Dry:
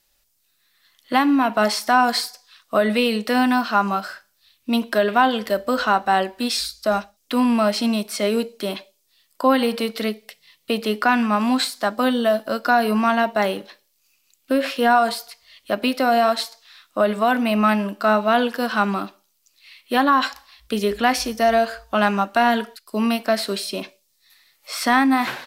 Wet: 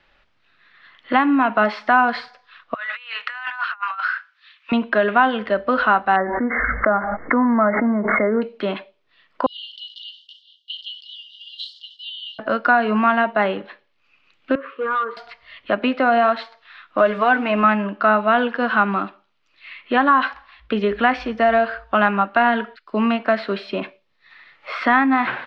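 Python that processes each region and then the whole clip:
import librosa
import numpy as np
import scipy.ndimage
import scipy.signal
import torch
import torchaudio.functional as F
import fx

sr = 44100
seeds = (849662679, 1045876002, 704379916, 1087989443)

y = fx.chain(x, sr, fx.highpass(hz=1200.0, slope=24),
    fx.over_compress(threshold_db=-33.0, ratio=-0.5), at=(2.74, 4.72))
y = fx.chain(y, sr, fx.brickwall_lowpass(high_hz=2200.0),
    fx.pre_swell(db_per_s=31.0), at=(6.16, 8.42))
y = fx.chain(y, sr, fx.brickwall_highpass(low_hz=2800.0),
    fx.sustainer(db_per_s=110.0), at=(9.46, 12.39))
y = fx.chain(y, sr, fx.cvsd(bps=64000),
    fx.double_bandpass(hz=720.0, octaves=1.4),
    fx.clip_hard(threshold_db=-23.5), at=(14.55, 15.17))
y = fx.chain(y, sr, fx.crossing_spikes(level_db=-24.5),
    fx.comb(ms=6.6, depth=0.5), at=(16.98, 17.64))
y = scipy.signal.sosfilt(scipy.signal.butter(4, 3000.0, 'lowpass', fs=sr, output='sos'), y)
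y = fx.peak_eq(y, sr, hz=1400.0, db=5.0, octaves=1.0)
y = fx.band_squash(y, sr, depth_pct=40)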